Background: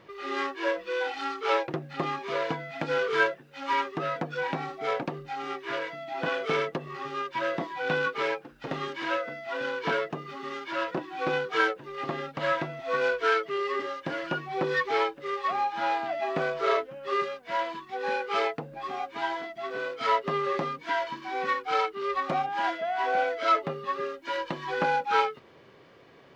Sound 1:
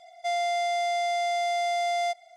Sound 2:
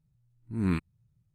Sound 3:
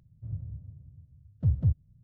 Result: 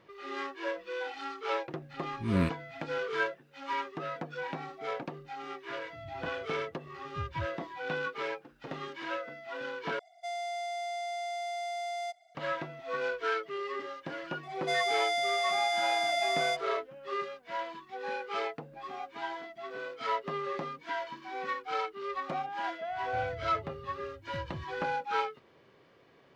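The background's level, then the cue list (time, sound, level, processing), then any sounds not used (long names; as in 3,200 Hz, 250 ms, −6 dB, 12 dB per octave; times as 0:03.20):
background −7 dB
0:01.70: mix in 2 −0.5 dB
0:05.73: mix in 3 −14.5 dB
0:09.99: overwrite with 1 −9.5 dB
0:14.43: mix in 1 −1 dB + comb filter 6.6 ms, depth 52%
0:22.91: mix in 3 −1 dB + downward compressor, threshold −40 dBFS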